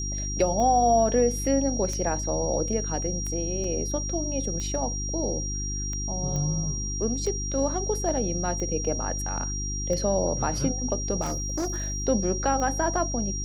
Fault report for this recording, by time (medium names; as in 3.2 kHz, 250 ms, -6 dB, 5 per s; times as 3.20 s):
hum 50 Hz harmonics 7 -32 dBFS
tick 45 rpm -21 dBFS
whine 5.7 kHz -32 dBFS
3.64 s: dropout 3 ms
6.36 s: pop -19 dBFS
11.21–12.06 s: clipped -24.5 dBFS